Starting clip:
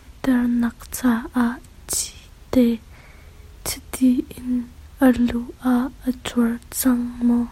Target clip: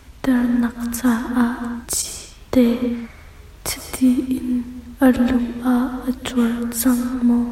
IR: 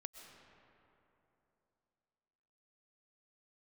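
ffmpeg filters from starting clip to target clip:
-filter_complex "[1:a]atrim=start_sample=2205,afade=t=out:st=0.37:d=0.01,atrim=end_sample=16758[a];[0:a][a]afir=irnorm=-1:irlink=0,asettb=1/sr,asplit=3[b][c][d];[b]atrim=end=2.024[e];[c]atrim=start=2.02:end=3.81,asetpts=PTS-STARTPTS,afade=t=in:d=0.004:c=qsin,afade=t=out:st=1.786:d=0.004:c=qsin,adynamicequalizer=threshold=0.00631:dfrequency=1400:dqfactor=0.76:tfrequency=1400:tqfactor=0.76:attack=5:release=100:ratio=0.375:range=2.5:mode=boostabove:tftype=bell[f];[d]atrim=start=3.806[g];[e][f]acrossfade=d=0.004:c1=hsin:c2=qsin[h];[h][g]acrossfade=d=0.004:c1=qsin:c2=hsin,volume=7dB"

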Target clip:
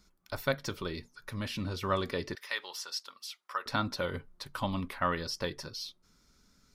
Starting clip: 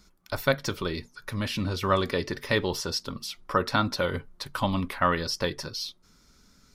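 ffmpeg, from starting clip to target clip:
-filter_complex "[0:a]asettb=1/sr,asplit=3[a][b][c];[a]atrim=end=2.354[d];[b]atrim=start=2.35:end=3.66,asetpts=PTS-STARTPTS,afade=t=in:d=0.004:c=qsin,afade=t=out:st=1.306:d=0.004:c=qsin,highpass=1.1k[e];[c]atrim=start=3.656[f];[d][e]acrossfade=d=0.004:c1=hsin:c2=qsin[g];[g][f]acrossfade=d=0.004:c1=qsin:c2=hsin,volume=-6.5dB"

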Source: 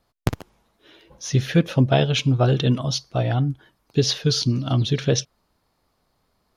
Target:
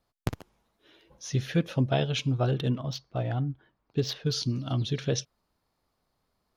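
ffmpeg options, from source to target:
-filter_complex "[0:a]asettb=1/sr,asplit=3[a][b][c];[a]atrim=end=2.514[d];[b]atrim=start=2.51:end=4.33,asetpts=PTS-STARTPTS,afade=t=in:d=0.004:c=qsin,afade=t=out:st=1.816:d=0.004:c=qsin,adynamicsmooth=sensitivity=1:basefreq=3.2k[e];[c]atrim=start=4.326[f];[d][e]acrossfade=d=0.004:c1=hsin:c2=qsin[g];[g][f]acrossfade=d=0.004:c1=qsin:c2=hsin,volume=-8dB"

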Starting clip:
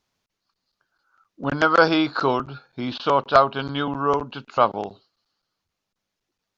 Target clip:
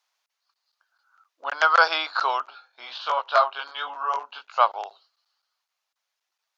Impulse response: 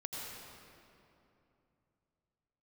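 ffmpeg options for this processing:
-filter_complex "[0:a]highpass=f=710:w=0.5412,highpass=f=710:w=1.3066,asettb=1/sr,asplit=3[a][b][c];[a]atrim=end=2.504[d];[b]atrim=start=2.5:end=4.59,asetpts=PTS-STARTPTS,afade=t=in:d=0.004:c=qsin,afade=t=out:st=2.086:d=0.004:c=qsin,flanger=delay=17.5:depth=3.9:speed=1.4[e];[c]atrim=start=4.586[f];[d][e]acrossfade=d=0.004:c1=hsin:c2=qsin[g];[g][f]acrossfade=d=0.004:c1=qsin:c2=hsin,volume=1dB"

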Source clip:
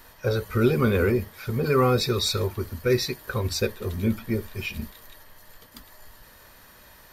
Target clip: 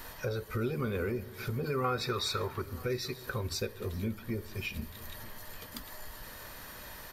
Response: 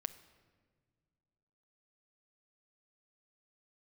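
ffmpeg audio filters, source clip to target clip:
-filter_complex "[0:a]asettb=1/sr,asplit=3[a][b][c];[a]atrim=end=1.844[d];[b]atrim=start=1.84:end=2.62,asetpts=PTS-STARTPTS,afade=t=in:d=0.004:c=qsin,afade=t=out:st=0.776:d=0.004:c=qsin,equalizer=f=1.3k:t=o:w=2:g=11.5[e];[c]atrim=start=2.616[f];[d][e]acrossfade=d=0.004:c1=hsin:c2=qsin[g];[g][f]acrossfade=d=0.004:c1=qsin:c2=hsin,asplit=2[h][i];[1:a]atrim=start_sample=2205[j];[i][j]afir=irnorm=-1:irlink=0,volume=-1.5dB[k];[h][k]amix=inputs=2:normalize=0,acompressor=threshold=-39dB:ratio=2.5,aecho=1:1:935:0.0891"

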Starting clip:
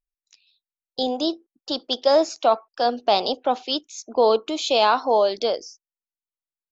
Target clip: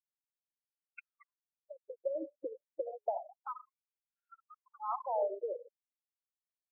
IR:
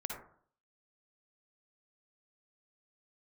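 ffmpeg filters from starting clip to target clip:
-filter_complex "[0:a]firequalizer=gain_entry='entry(360,0);entry(810,-5);entry(1300,5);entry(2100,-22);entry(3900,14)':delay=0.05:min_phase=1,acompressor=threshold=-28dB:ratio=20,asplit=2[a][b];[b]highshelf=f=2.2k:g=9.5[c];[1:a]atrim=start_sample=2205,highshelf=f=3.3k:g=10.5[d];[c][d]afir=irnorm=-1:irlink=0,volume=-6.5dB[e];[a][e]amix=inputs=2:normalize=0,anlmdn=10,aresample=11025,asoftclip=type=tanh:threshold=-18dB,aresample=44100,afftfilt=real='re*gte(hypot(re,im),0.0282)':imag='im*gte(hypot(re,im),0.0282)':win_size=1024:overlap=0.75,afftfilt=real='re*between(b*sr/1024,390*pow(2000/390,0.5+0.5*sin(2*PI*0.3*pts/sr))/1.41,390*pow(2000/390,0.5+0.5*sin(2*PI*0.3*pts/sr))*1.41)':imag='im*between(b*sr/1024,390*pow(2000/390,0.5+0.5*sin(2*PI*0.3*pts/sr))/1.41,390*pow(2000/390,0.5+0.5*sin(2*PI*0.3*pts/sr))*1.41)':win_size=1024:overlap=0.75"

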